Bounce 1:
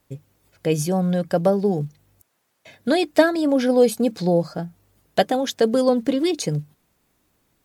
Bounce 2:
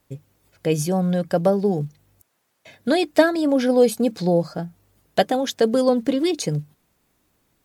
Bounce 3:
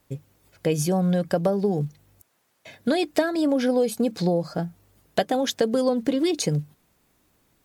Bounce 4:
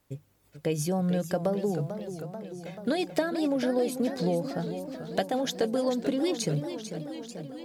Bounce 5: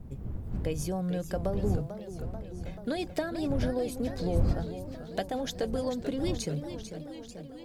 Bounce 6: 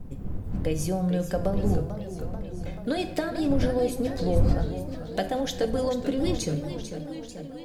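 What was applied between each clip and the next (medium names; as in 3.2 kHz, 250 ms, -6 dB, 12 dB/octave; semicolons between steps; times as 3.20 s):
no audible change
compression 5:1, threshold -20 dBFS, peak gain reduction 10.5 dB; trim +1.5 dB
modulated delay 440 ms, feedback 70%, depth 154 cents, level -10 dB; trim -5.5 dB
wind noise 120 Hz -31 dBFS; trim -4.5 dB
reverberation RT60 0.75 s, pre-delay 4 ms, DRR 6 dB; trim +3.5 dB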